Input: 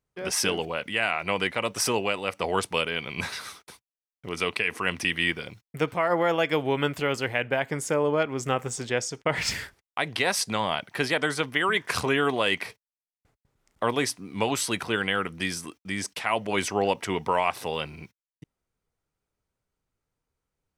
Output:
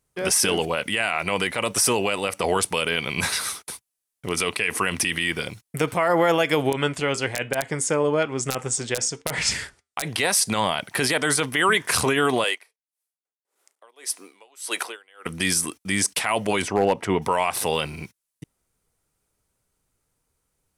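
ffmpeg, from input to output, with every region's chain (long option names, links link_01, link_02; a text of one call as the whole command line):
ffmpeg -i in.wav -filter_complex "[0:a]asettb=1/sr,asplit=3[link_01][link_02][link_03];[link_01]atrim=end=6.704[link_04];[link_02]atrim=start=6.7:end=10.05,asetpts=PTS-STARTPTS,afade=type=in:duration=0.004:curve=qsin,afade=type=out:start_time=3.346:duration=0.004:curve=qsin,lowpass=frequency=8900:width=0.5412,lowpass=frequency=8900:width=1.3066,flanger=delay=4.8:depth=1.5:regen=-84:speed=1.1:shape=triangular,aeval=exprs='(mod(6.31*val(0)+1,2)-1)/6.31':channel_layout=same[link_05];[link_03]atrim=start=10.046[link_06];[link_04][link_05]acrossfade=duration=0.004:curve1=hsin:curve2=qsin[link_07];[link_07][link_06]acrossfade=duration=0.004:curve1=qsin:curve2=hsin,asettb=1/sr,asplit=3[link_08][link_09][link_10];[link_08]atrim=end=12.444[link_11];[link_09]atrim=start=12.44:end=15.26,asetpts=PTS-STARTPTS,afade=type=in:duration=0.004:curve=qsin,afade=type=out:start_time=2.816:duration=0.004:curve=qsin,highpass=frequency=390:width=0.5412,highpass=frequency=390:width=1.3066,aeval=exprs='val(0)*pow(10,-37*(0.5-0.5*cos(2*PI*1.7*n/s))/20)':channel_layout=same[link_12];[link_10]atrim=start=15.256[link_13];[link_11][link_12]acrossfade=duration=0.004:curve1=hsin:curve2=qsin[link_14];[link_14][link_13]acrossfade=duration=0.004:curve1=qsin:curve2=hsin,asettb=1/sr,asplit=3[link_15][link_16][link_17];[link_15]atrim=end=16.624[link_18];[link_16]atrim=start=16.62:end=17.22,asetpts=PTS-STARTPTS,afade=type=in:duration=0.004:curve=qsin,afade=type=out:start_time=0.596:duration=0.004:curve=qsin,lowpass=frequency=1200:poles=1,volume=16dB,asoftclip=hard,volume=-16dB[link_19];[link_17]atrim=start=17.216[link_20];[link_18][link_19]acrossfade=duration=0.004:curve1=hsin:curve2=qsin[link_21];[link_21][link_20]acrossfade=duration=0.004:curve1=qsin:curve2=hsin,equalizer=frequency=10000:width=0.9:gain=12,alimiter=limit=-17dB:level=0:latency=1:release=41,volume=7dB" out.wav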